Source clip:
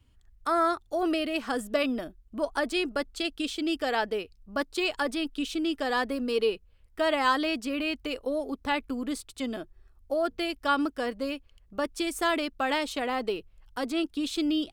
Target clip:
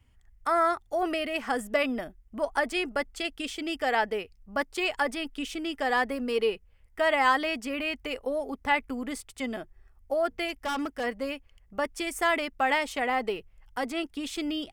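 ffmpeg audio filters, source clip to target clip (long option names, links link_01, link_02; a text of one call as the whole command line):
ffmpeg -i in.wav -filter_complex "[0:a]equalizer=frequency=315:width_type=o:width=0.33:gain=-6,equalizer=frequency=800:width_type=o:width=0.33:gain=5,equalizer=frequency=2000:width_type=o:width=0.33:gain=8,equalizer=frequency=4000:width_type=o:width=0.33:gain=-8,asettb=1/sr,asplit=3[link_01][link_02][link_03];[link_01]atrim=end=10.484[link_04];[link_02]atrim=start=10.48:end=11.04,asetpts=PTS-STARTPTS,afade=type=in:duration=0.004:curve=qsin,afade=type=out:start_time=0.556:duration=0.004:curve=qsin,asoftclip=type=hard:threshold=-27dB[link_05];[link_03]atrim=start=11.036[link_06];[link_04][link_05]acrossfade=duration=0.004:curve1=hsin:curve2=qsin[link_07];[link_07][link_06]acrossfade=duration=0.004:curve1=qsin:curve2=hsin" out.wav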